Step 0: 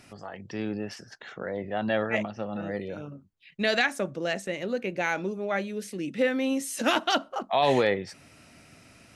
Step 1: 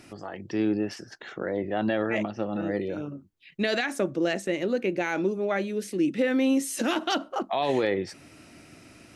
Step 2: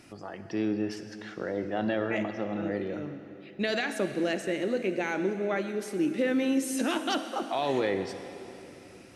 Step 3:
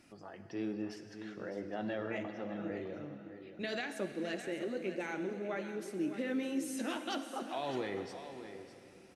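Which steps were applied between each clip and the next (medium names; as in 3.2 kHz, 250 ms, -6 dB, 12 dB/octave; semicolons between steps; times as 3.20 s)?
peaking EQ 330 Hz +9 dB 0.51 oct; peak limiter -17.5 dBFS, peak gain reduction 8.5 dB; trim +1.5 dB
reverberation RT60 3.1 s, pre-delay 42 ms, DRR 9 dB; trim -3 dB
flange 1.2 Hz, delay 3.3 ms, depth 5.8 ms, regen -53%; delay 608 ms -11.5 dB; trim -5 dB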